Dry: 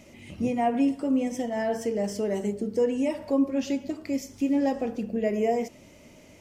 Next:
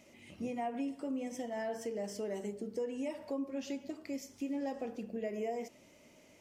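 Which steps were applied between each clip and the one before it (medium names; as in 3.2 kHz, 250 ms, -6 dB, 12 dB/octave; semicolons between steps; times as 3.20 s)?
bass shelf 150 Hz -11.5 dB; compression 3:1, threshold -27 dBFS, peak gain reduction 5.5 dB; trim -7.5 dB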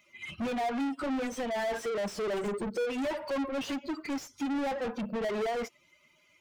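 expander on every frequency bin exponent 2; overdrive pedal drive 38 dB, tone 2.3 kHz, clips at -30 dBFS; upward expansion 1.5:1, over -55 dBFS; trim +5.5 dB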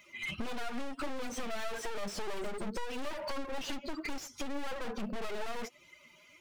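one-sided wavefolder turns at -37.5 dBFS; compression 6:1, threshold -41 dBFS, peak gain reduction 11.5 dB; flange 1.7 Hz, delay 1.8 ms, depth 3.5 ms, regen +57%; trim +10 dB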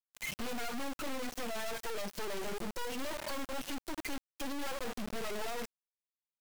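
word length cut 6-bit, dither none; trim -3 dB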